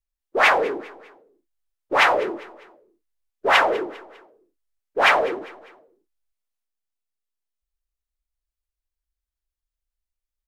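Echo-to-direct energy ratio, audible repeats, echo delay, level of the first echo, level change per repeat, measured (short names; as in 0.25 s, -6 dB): -18.5 dB, 3, 0.2 s, -19.5 dB, -7.5 dB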